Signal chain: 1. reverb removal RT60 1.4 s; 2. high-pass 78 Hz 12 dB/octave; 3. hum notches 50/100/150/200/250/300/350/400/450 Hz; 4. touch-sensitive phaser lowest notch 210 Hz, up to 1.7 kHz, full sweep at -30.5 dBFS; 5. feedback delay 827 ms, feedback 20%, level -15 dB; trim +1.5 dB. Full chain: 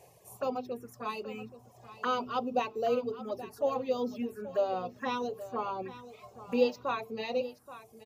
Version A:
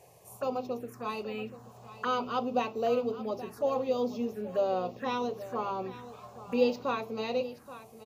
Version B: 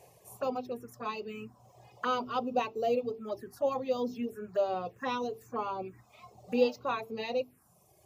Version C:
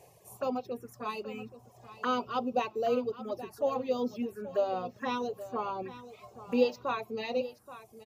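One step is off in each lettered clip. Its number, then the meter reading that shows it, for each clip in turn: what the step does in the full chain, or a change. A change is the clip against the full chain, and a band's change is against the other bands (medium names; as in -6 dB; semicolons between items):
1, 125 Hz band +3.0 dB; 5, momentary loudness spread change -7 LU; 3, 250 Hz band +1.5 dB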